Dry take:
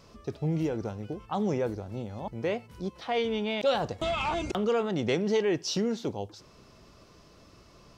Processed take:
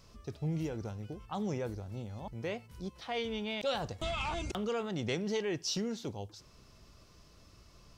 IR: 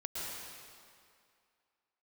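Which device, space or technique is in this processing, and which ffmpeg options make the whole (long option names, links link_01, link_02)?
smiley-face EQ: -af "lowshelf=frequency=100:gain=8.5,equalizer=frequency=400:width_type=o:width=2.9:gain=-4,highshelf=frequency=5500:gain=6,volume=-5dB"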